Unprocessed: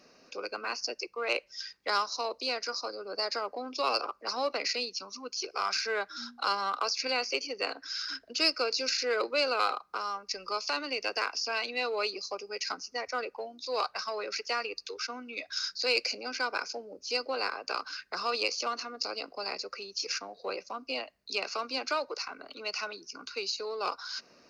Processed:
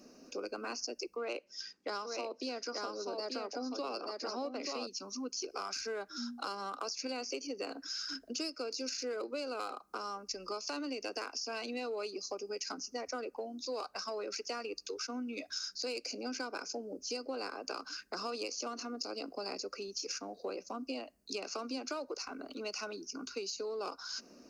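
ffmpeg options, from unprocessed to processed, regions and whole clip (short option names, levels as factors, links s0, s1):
-filter_complex "[0:a]asettb=1/sr,asplit=3[s0][s1][s2];[s0]atrim=end=1.164[s3];[s1]atrim=start=1.16:end=4.87,asetpts=PTS-STARTPTS,afade=t=in:d=0.004:c=qsin,afade=t=out:st=3.706:d=0.004:c=qsin,highpass=130,lowpass=5600,aecho=1:1:883:0.596,atrim=end_sample=163611[s4];[s2]atrim=start=4.866[s5];[s3][s4]acrossfade=d=0.004:c1=hsin:c2=qsin[s6];[s6][s5]acrossfade=d=0.004:c1=qsin:c2=hsin,equalizer=f=125:t=o:w=1:g=-12,equalizer=f=250:t=o:w=1:g=7,equalizer=f=500:t=o:w=1:g=-4,equalizer=f=1000:t=o:w=1:g=-7,equalizer=f=2000:t=o:w=1:g=-11,equalizer=f=4000:t=o:w=1:g=-11,equalizer=f=8000:t=o:w=1:g=3,acompressor=threshold=0.00794:ratio=6,volume=2"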